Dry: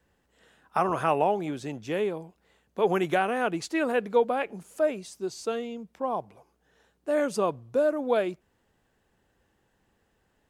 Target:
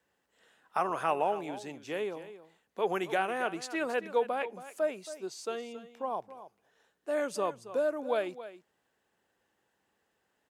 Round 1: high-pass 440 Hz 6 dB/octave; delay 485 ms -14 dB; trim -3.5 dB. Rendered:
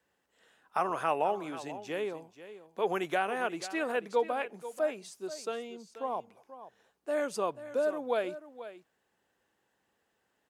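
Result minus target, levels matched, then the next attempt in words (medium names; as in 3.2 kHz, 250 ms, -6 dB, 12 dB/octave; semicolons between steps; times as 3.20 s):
echo 211 ms late
high-pass 440 Hz 6 dB/octave; delay 274 ms -14 dB; trim -3.5 dB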